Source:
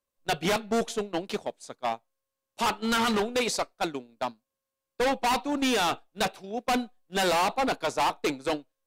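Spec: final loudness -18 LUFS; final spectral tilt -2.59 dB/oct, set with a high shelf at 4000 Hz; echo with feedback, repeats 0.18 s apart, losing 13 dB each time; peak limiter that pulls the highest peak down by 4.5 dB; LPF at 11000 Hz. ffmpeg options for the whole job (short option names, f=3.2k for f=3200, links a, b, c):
-af "lowpass=11k,highshelf=f=4k:g=7.5,alimiter=limit=-19.5dB:level=0:latency=1,aecho=1:1:180|360|540:0.224|0.0493|0.0108,volume=11.5dB"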